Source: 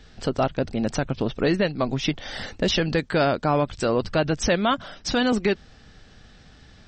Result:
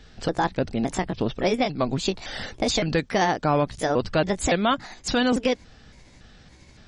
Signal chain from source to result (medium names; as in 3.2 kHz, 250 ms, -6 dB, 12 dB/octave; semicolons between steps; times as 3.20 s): pitch shift switched off and on +4 st, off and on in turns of 282 ms